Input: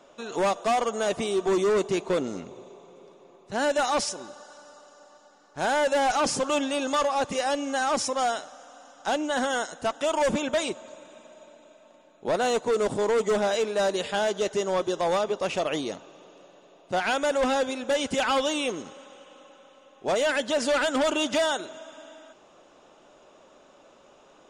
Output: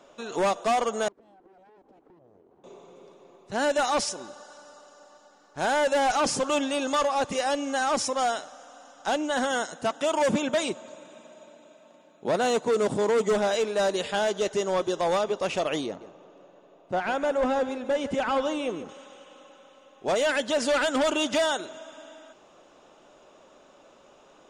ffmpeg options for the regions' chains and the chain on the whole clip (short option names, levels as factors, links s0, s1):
-filter_complex "[0:a]asettb=1/sr,asplit=3[s0][s1][s2];[s0]atrim=end=1.084[s3];[s1]atrim=start=1.08:end=2.64,asetpts=PTS-STARTPTS,afade=t=in:d=0.004:c=qsin,afade=t=out:st=1.556:d=0.004:c=qsin,aeval=exprs='abs(val(0))':c=same,bandpass=f=370:t=q:w=3.1,acompressor=threshold=0.00224:ratio=8:attack=3.2:release=140:knee=1:detection=peak[s4];[s2]atrim=start=2.636[s5];[s3][s4]acrossfade=d=0.004:c1=hsin:c2=qsin[s6];[s6][s5]acrossfade=d=0.004:c1=qsin:c2=hsin,asettb=1/sr,asplit=3[s7][s8][s9];[s7]atrim=end=9.514[s10];[s8]atrim=start=9.51:end=13.33,asetpts=PTS-STARTPTS,afade=t=in:d=0.004:c=qsin,afade=t=out:st=3.816:d=0.004:c=qsin,highpass=120,bass=f=250:g=5,treble=f=4000:g=0[s11];[s9]atrim=start=13.326[s12];[s10][s11]acrossfade=d=0.004:c1=hsin:c2=qsin[s13];[s13][s12]acrossfade=d=0.004:c1=qsin:c2=hsin,asettb=1/sr,asplit=3[s14][s15][s16];[s14]atrim=end=15.864[s17];[s15]atrim=start=15.86:end=18.89,asetpts=PTS-STARTPTS,afade=t=in:d=0.004:c=qsin,afade=t=out:st=3.026:d=0.004:c=qsin,lowpass=6400,equalizer=f=4400:t=o:w=2.2:g=-10,aecho=1:1:148:0.2,atrim=end_sample=133623[s18];[s16]atrim=start=18.886[s19];[s17][s18]acrossfade=d=0.004:c1=hsin:c2=qsin[s20];[s20][s19]acrossfade=d=0.004:c1=qsin:c2=hsin"